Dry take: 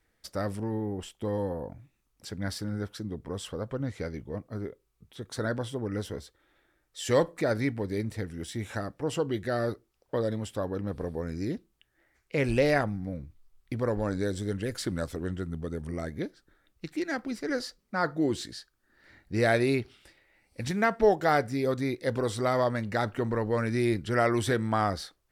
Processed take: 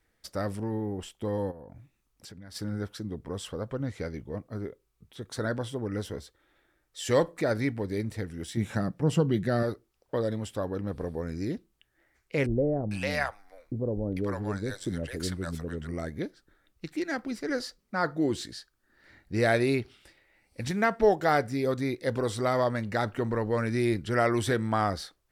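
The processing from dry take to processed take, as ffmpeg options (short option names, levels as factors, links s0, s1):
-filter_complex "[0:a]asplit=3[s0][s1][s2];[s0]afade=t=out:st=1.5:d=0.02[s3];[s1]acompressor=threshold=0.00794:ratio=10:attack=3.2:release=140:knee=1:detection=peak,afade=t=in:st=1.5:d=0.02,afade=t=out:st=2.54:d=0.02[s4];[s2]afade=t=in:st=2.54:d=0.02[s5];[s3][s4][s5]amix=inputs=3:normalize=0,asettb=1/sr,asplit=3[s6][s7][s8];[s6]atrim=end=8.574[s9];[s7]atrim=start=8.57:end=9.63,asetpts=PTS-STARTPTS,afade=t=in:d=0.004:c=qsin,afade=t=out:st=1.056:d=0.004:c=qsin,equalizer=f=170:w=1.5:g=14[s10];[s8]atrim=start=9.626[s11];[s9][s10]acrossfade=d=0.004:c1=hsin:c2=qsin[s12];[s12][s11]acrossfade=d=0.004:c1=qsin:c2=hsin,asettb=1/sr,asplit=3[s13][s14][s15];[s13]atrim=end=12.464[s16];[s14]atrim=start=12.46:end=15.87,asetpts=PTS-STARTPTS,afade=t=in:d=0.004:c=qsin,afade=t=out:st=3.406:d=0.004:c=qsin,acrossover=split=640[s17][s18];[s18]adelay=450[s19];[s17][s19]amix=inputs=2:normalize=0,atrim=end_sample=150381[s20];[s15]atrim=start=15.866[s21];[s16][s20]acrossfade=d=0.004:c1=hsin:c2=qsin[s22];[s22][s21]acrossfade=d=0.004:c1=qsin:c2=hsin"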